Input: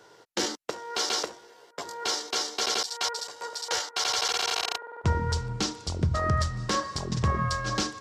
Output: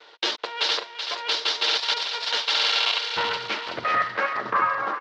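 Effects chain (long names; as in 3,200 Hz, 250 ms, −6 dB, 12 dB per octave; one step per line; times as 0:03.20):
lower of the sound and its delayed copy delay 8.7 ms
low-pass filter 4,900 Hz 12 dB per octave
noise gate with hold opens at −51 dBFS
high-pass filter 480 Hz 12 dB per octave
high-shelf EQ 3,500 Hz +3.5 dB
in parallel at −1.5 dB: brickwall limiter −24.5 dBFS, peak gain reduction 7 dB
on the sum: pitch vibrato 10 Hz 14 cents
tempo change 1.6×
low-pass filter sweep 3,700 Hz → 690 Hz, 0:02.74–0:05.96
on a send: feedback echo with a high-pass in the loop 379 ms, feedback 42%, high-pass 890 Hz, level −7 dB
on the sum: level +1 dB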